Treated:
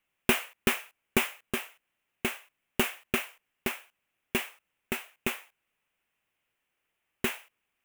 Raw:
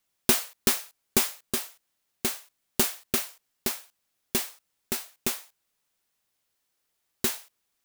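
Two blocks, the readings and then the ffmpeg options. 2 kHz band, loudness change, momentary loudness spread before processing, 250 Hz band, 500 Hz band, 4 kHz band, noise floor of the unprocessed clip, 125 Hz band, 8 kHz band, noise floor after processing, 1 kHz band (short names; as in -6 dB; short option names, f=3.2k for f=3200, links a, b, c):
+4.5 dB, -4.0 dB, 14 LU, 0.0 dB, 0.0 dB, -3.5 dB, -78 dBFS, 0.0 dB, -10.0 dB, -82 dBFS, +1.0 dB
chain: -af "highshelf=f=3.4k:t=q:w=3:g=-8.5"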